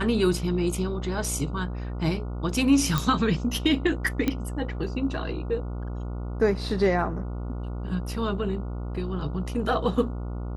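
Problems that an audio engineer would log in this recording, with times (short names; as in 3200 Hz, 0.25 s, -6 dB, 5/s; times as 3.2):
buzz 60 Hz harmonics 24 -32 dBFS
2.98 pop
4.28 pop -11 dBFS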